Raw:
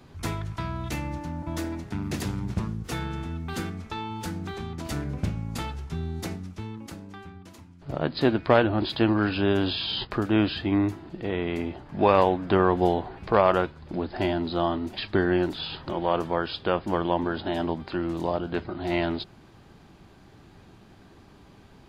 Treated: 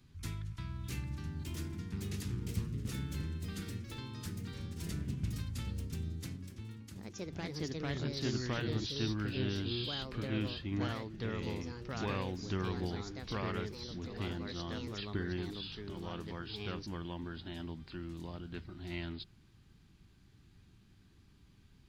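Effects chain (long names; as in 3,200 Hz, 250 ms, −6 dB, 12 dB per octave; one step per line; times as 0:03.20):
guitar amp tone stack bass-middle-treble 6-0-2
delay with pitch and tempo change per echo 689 ms, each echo +3 semitones, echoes 2
level +5.5 dB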